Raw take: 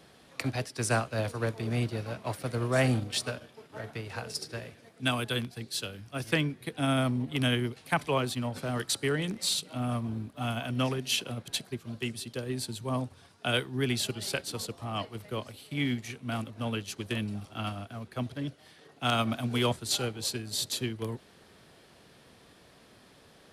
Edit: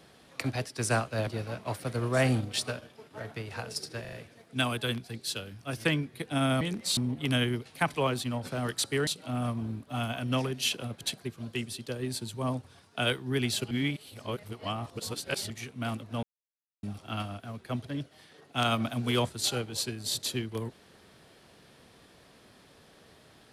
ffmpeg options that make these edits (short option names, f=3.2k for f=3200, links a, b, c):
-filter_complex "[0:a]asplit=12[a][b][c][d][e][f][g][h][i][j][k][l];[a]atrim=end=1.272[m];[b]atrim=start=1.858:end=4.642[n];[c]atrim=start=4.598:end=4.642[o];[d]atrim=start=4.598:end=4.642[p];[e]atrim=start=4.598:end=7.082[q];[f]atrim=start=9.178:end=9.542[r];[g]atrim=start=7.078:end=9.182[s];[h]atrim=start=9.538:end=14.182[t];[i]atrim=start=14.178:end=15.972,asetpts=PTS-STARTPTS,areverse[u];[j]atrim=start=15.968:end=16.7,asetpts=PTS-STARTPTS,afade=t=out:st=0.728:d=0.004:c=hsin[v];[k]atrim=start=16.7:end=17.3,asetpts=PTS-STARTPTS,volume=0[w];[l]atrim=start=17.3,asetpts=PTS-STARTPTS,afade=t=in:d=0.004:c=hsin[x];[m][n]acrossfade=d=0.004:c1=hsin:c2=hsin[y];[y][o]acrossfade=d=0.004:c1=hsin:c2=hsin[z];[z][p]acrossfade=d=0.004:c1=hsin:c2=hsin[aa];[aa][q]acrossfade=d=0.004:c1=hsin:c2=hsin[ab];[ab][r]acrossfade=d=0.004:c1=hsin:c2=hsin[ac];[ac][s]acrossfade=d=0.004:c1=hsin:c2=hsin[ad];[ad][t]acrossfade=d=0.004:c1=hsin:c2=hsin[ae];[ae][u]acrossfade=d=0.004:c1=hsin:c2=hsin[af];[v][w][x]concat=n=3:v=0:a=1[ag];[af][ag]acrossfade=d=0.004:c1=hsin:c2=hsin"